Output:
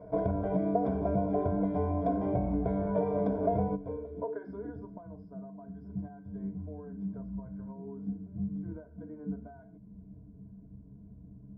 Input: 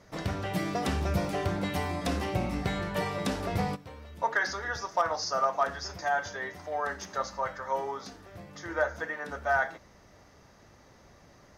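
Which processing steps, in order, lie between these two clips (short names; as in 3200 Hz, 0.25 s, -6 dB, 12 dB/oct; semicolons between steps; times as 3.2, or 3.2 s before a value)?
ripple EQ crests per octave 1.7, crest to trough 17 dB; compressor 5:1, threshold -31 dBFS, peak gain reduction 14.5 dB; low-pass sweep 620 Hz -> 200 Hz, 3.72–5.11; gain +2.5 dB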